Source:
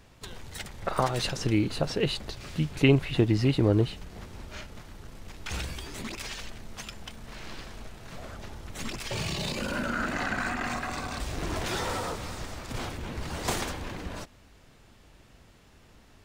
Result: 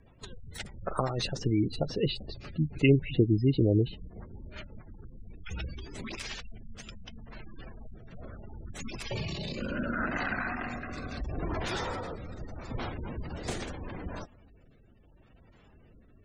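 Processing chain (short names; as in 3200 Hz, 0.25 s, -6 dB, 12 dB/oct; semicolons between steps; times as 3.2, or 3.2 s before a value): spectral gate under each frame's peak -20 dB strong; rotary speaker horn 8 Hz, later 0.75 Hz, at 5.03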